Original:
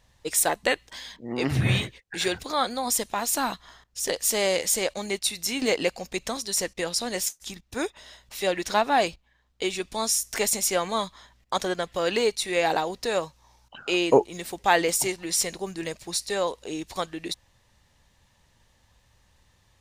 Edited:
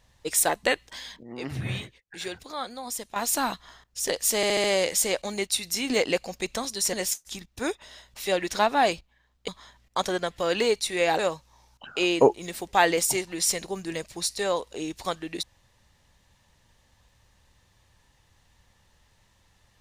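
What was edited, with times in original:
0:01.23–0:03.16: clip gain −8.5 dB
0:04.36: stutter 0.07 s, 5 plays
0:06.65–0:07.08: remove
0:09.63–0:11.04: remove
0:12.75–0:13.10: remove

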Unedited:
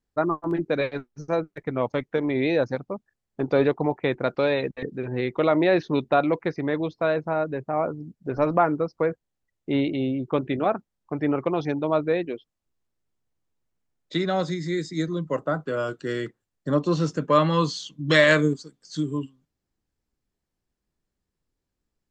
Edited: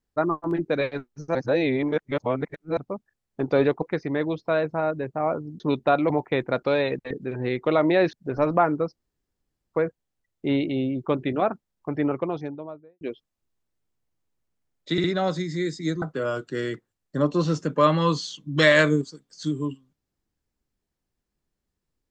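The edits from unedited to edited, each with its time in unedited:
0:01.35–0:02.77: reverse
0:03.82–0:05.85: swap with 0:06.35–0:08.13
0:08.97: splice in room tone 0.76 s
0:11.14–0:12.25: fade out and dull
0:14.16: stutter 0.06 s, 3 plays
0:15.14–0:15.54: remove

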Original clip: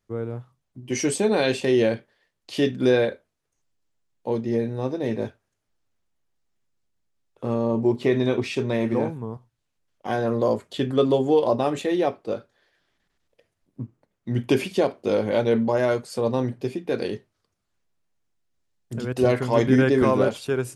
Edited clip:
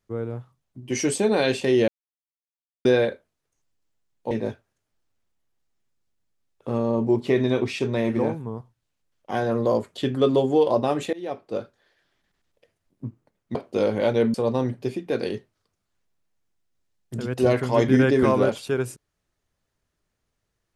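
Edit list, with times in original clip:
0:01.88–0:02.85: silence
0:04.31–0:05.07: remove
0:11.89–0:12.36: fade in, from −22.5 dB
0:14.31–0:14.86: remove
0:15.65–0:16.13: remove

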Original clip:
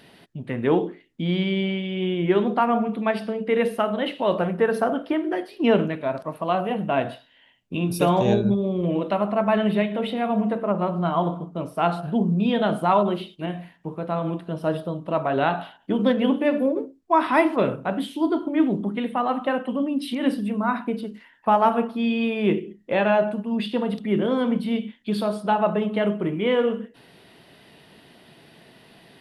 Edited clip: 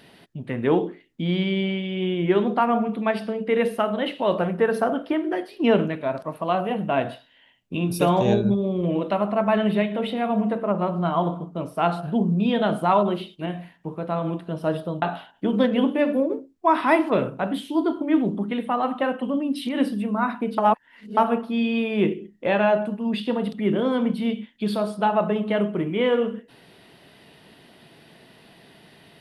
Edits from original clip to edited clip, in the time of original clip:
0:15.02–0:15.48: remove
0:21.04–0:21.63: reverse

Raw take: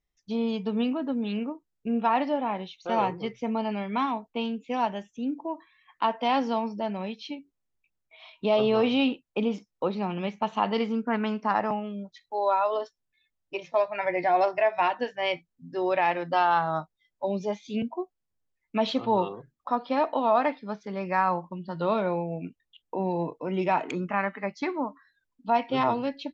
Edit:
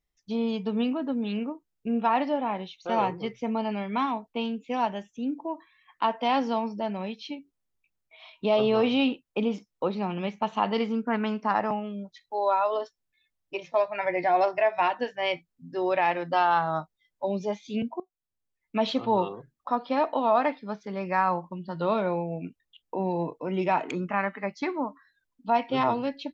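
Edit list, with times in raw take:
0:18.00–0:18.81: fade in, from −20.5 dB

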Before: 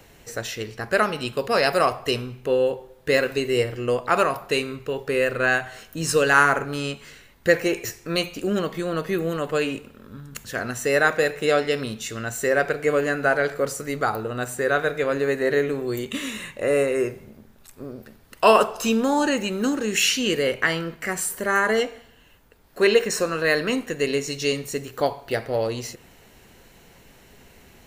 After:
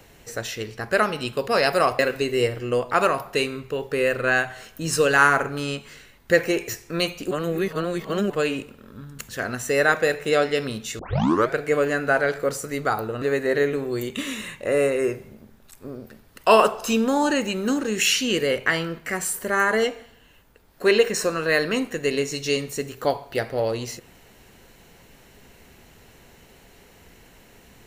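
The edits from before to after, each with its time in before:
0:01.99–0:03.15: remove
0:08.47–0:09.46: reverse
0:12.15: tape start 0.54 s
0:14.38–0:15.18: remove

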